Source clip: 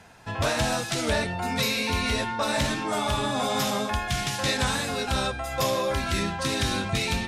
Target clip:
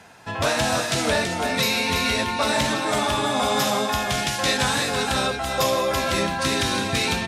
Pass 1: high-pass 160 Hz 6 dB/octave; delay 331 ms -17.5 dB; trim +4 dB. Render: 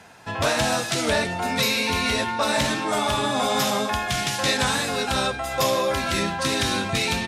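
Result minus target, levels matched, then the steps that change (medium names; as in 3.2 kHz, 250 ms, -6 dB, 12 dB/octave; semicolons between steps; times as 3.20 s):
echo-to-direct -11 dB
change: delay 331 ms -6.5 dB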